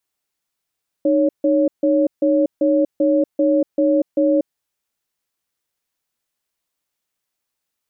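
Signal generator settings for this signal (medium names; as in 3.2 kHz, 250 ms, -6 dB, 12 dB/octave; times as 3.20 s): cadence 306 Hz, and 558 Hz, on 0.24 s, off 0.15 s, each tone -15.5 dBFS 3.41 s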